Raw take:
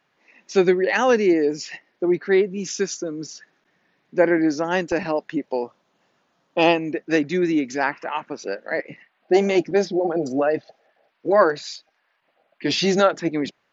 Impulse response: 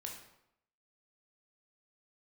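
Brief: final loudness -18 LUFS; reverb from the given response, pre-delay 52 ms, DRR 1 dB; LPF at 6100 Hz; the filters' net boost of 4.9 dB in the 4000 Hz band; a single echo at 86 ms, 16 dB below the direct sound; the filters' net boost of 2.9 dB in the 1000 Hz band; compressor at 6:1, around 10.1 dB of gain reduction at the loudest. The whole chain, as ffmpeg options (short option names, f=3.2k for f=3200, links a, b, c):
-filter_complex "[0:a]lowpass=6.1k,equalizer=f=1k:t=o:g=3.5,equalizer=f=4k:t=o:g=7,acompressor=threshold=-21dB:ratio=6,aecho=1:1:86:0.158,asplit=2[a][b];[1:a]atrim=start_sample=2205,adelay=52[c];[b][c]afir=irnorm=-1:irlink=0,volume=1.5dB[d];[a][d]amix=inputs=2:normalize=0,volume=6.5dB"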